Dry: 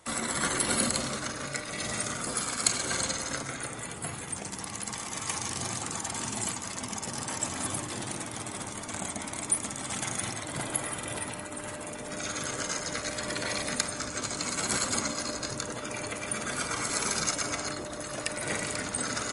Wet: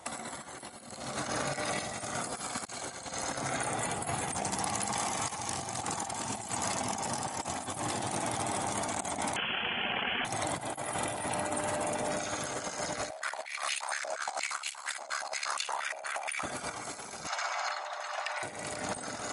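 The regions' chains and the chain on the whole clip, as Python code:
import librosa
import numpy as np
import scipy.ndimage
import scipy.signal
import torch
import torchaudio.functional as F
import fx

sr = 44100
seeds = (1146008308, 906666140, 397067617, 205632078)

y = fx.chain(x, sr, fx.highpass(hz=450.0, slope=24),
    fx.freq_invert(carrier_hz=3700),
    fx.env_flatten(amount_pct=70), at=(9.36, 10.25))
y = fx.chain(y, sr, fx.notch(hz=6800.0, q=26.0),
    fx.ring_mod(carrier_hz=35.0),
    fx.filter_held_highpass(hz=8.5, low_hz=640.0, high_hz=2700.0), at=(13.1, 16.43))
y = fx.chain(y, sr, fx.highpass(hz=830.0, slope=24),
    fx.air_absorb(metres=140.0), at=(17.27, 18.43))
y = scipy.signal.sosfilt(scipy.signal.butter(2, 59.0, 'highpass', fs=sr, output='sos'), y)
y = fx.peak_eq(y, sr, hz=760.0, db=11.0, octaves=0.56)
y = fx.over_compress(y, sr, threshold_db=-35.0, ratio=-0.5)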